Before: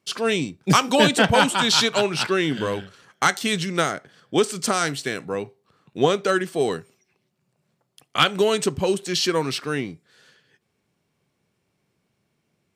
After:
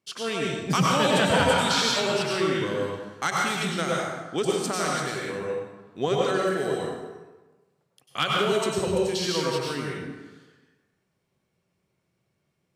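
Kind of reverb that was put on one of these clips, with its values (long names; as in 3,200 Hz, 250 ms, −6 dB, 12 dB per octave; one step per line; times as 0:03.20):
dense smooth reverb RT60 1.2 s, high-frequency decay 0.65×, pre-delay 85 ms, DRR −3.5 dB
level −8.5 dB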